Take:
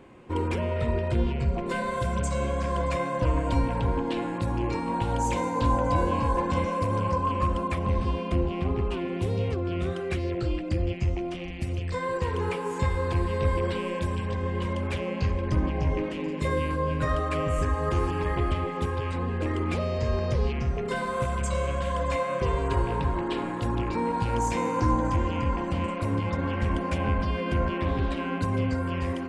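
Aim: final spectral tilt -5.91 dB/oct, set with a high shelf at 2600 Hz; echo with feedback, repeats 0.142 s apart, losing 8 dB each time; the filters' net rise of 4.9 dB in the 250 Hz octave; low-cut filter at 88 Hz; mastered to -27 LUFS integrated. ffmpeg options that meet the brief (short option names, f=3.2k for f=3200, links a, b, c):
-af "highpass=88,equalizer=f=250:t=o:g=6.5,highshelf=f=2.6k:g=-4.5,aecho=1:1:142|284|426|568|710:0.398|0.159|0.0637|0.0255|0.0102,volume=-0.5dB"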